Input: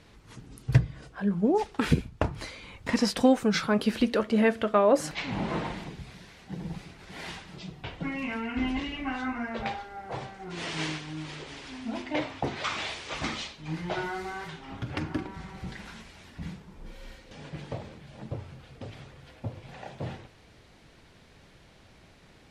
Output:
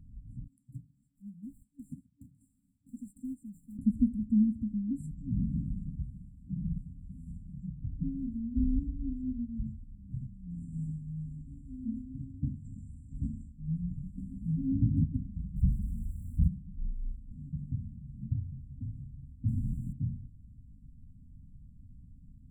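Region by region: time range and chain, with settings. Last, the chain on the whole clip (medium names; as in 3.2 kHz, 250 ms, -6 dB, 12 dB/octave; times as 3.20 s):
0.47–3.79 s: high-pass 630 Hz + short-mantissa float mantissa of 2-bit
14.18–15.04 s: peaking EQ 320 Hz +13 dB 1.7 oct + upward compressor, threshold -25 dBFS + doubling 19 ms -3 dB
15.56–16.48 s: zero-crossing glitches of -34.5 dBFS + bass shelf 200 Hz +10.5 dB
19.48–19.93 s: sorted samples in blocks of 128 samples + waveshaping leveller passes 5
whole clip: RIAA curve playback; FFT band-reject 280–7200 Hz; trim -7.5 dB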